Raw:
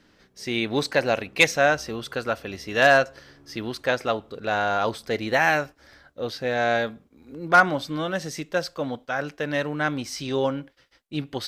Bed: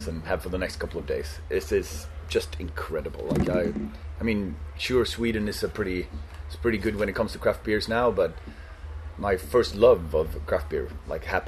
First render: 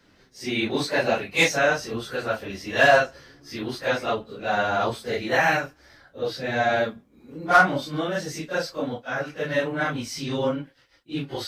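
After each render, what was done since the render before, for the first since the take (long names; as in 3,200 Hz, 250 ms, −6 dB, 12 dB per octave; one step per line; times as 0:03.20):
random phases in long frames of 100 ms
hard clipping −6.5 dBFS, distortion −30 dB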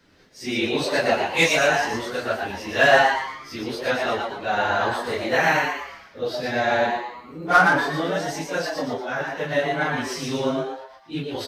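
double-tracking delay 12 ms −11 dB
on a send: echo with shifted repeats 117 ms, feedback 41%, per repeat +130 Hz, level −4 dB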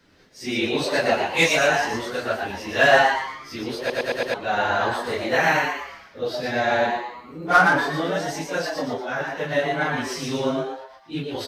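0:03.79: stutter in place 0.11 s, 5 plays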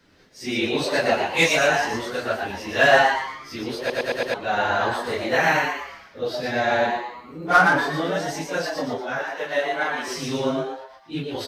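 0:09.19–0:10.08: high-pass filter 400 Hz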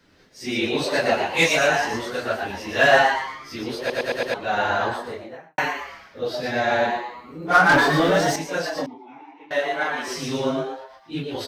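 0:04.70–0:05.58: fade out and dull
0:07.69–0:08.36: leveller curve on the samples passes 2
0:08.86–0:09.51: formant filter u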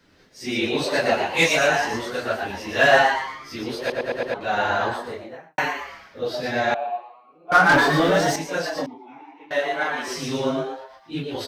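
0:03.92–0:04.41: high-shelf EQ 2,900 Hz −11.5 dB
0:06.74–0:07.52: formant filter a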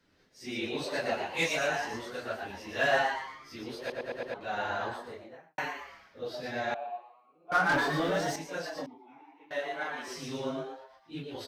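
level −11 dB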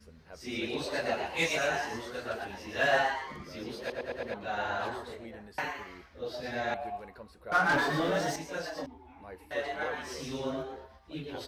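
mix in bed −22.5 dB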